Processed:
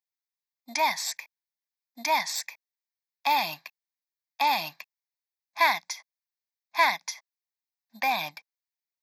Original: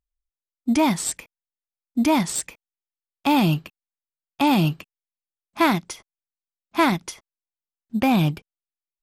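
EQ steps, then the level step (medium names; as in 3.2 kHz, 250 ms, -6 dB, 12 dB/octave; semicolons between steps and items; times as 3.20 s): high-pass 980 Hz 12 dB/octave; static phaser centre 2 kHz, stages 8; +3.5 dB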